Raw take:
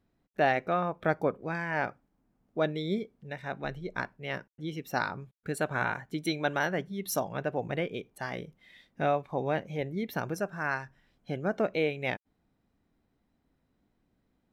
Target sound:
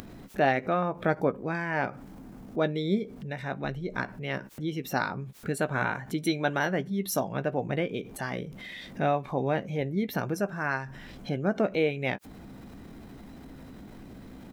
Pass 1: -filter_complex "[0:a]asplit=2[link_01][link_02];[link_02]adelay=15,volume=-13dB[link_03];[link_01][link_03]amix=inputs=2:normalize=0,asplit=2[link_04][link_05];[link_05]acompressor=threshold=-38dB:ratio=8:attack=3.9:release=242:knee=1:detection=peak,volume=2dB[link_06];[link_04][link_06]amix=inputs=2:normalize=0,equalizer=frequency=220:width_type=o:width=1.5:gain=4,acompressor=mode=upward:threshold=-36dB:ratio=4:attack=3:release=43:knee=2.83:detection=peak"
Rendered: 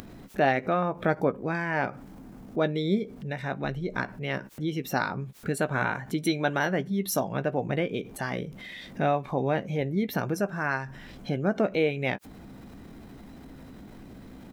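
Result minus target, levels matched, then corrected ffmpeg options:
downward compressor: peak gain reduction −8 dB
-filter_complex "[0:a]asplit=2[link_01][link_02];[link_02]adelay=15,volume=-13dB[link_03];[link_01][link_03]amix=inputs=2:normalize=0,asplit=2[link_04][link_05];[link_05]acompressor=threshold=-47dB:ratio=8:attack=3.9:release=242:knee=1:detection=peak,volume=2dB[link_06];[link_04][link_06]amix=inputs=2:normalize=0,equalizer=frequency=220:width_type=o:width=1.5:gain=4,acompressor=mode=upward:threshold=-36dB:ratio=4:attack=3:release=43:knee=2.83:detection=peak"

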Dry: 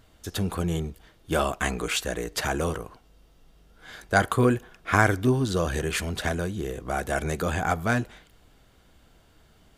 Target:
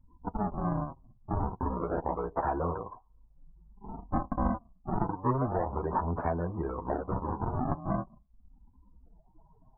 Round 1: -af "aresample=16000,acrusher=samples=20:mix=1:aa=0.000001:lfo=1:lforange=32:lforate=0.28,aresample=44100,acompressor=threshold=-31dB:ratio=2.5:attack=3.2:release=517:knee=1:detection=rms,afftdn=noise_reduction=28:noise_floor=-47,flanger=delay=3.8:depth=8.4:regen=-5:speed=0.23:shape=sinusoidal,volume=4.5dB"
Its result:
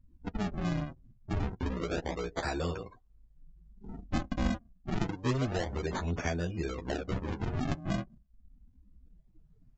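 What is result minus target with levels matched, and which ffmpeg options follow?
1,000 Hz band −6.5 dB
-af "aresample=16000,acrusher=samples=20:mix=1:aa=0.000001:lfo=1:lforange=32:lforate=0.28,aresample=44100,acompressor=threshold=-31dB:ratio=2.5:attack=3.2:release=517:knee=1:detection=rms,lowpass=frequency=980:width_type=q:width=3.7,afftdn=noise_reduction=28:noise_floor=-47,flanger=delay=3.8:depth=8.4:regen=-5:speed=0.23:shape=sinusoidal,volume=4.5dB"

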